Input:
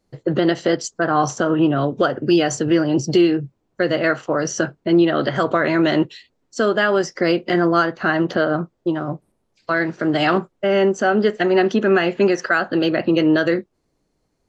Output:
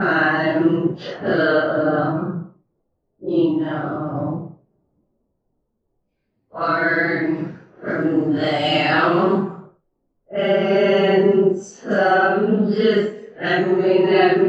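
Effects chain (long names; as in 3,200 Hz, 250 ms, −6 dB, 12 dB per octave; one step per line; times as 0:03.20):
extreme stretch with random phases 4×, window 0.05 s, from 0:08.04
low-pass that shuts in the quiet parts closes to 710 Hz, open at −16.5 dBFS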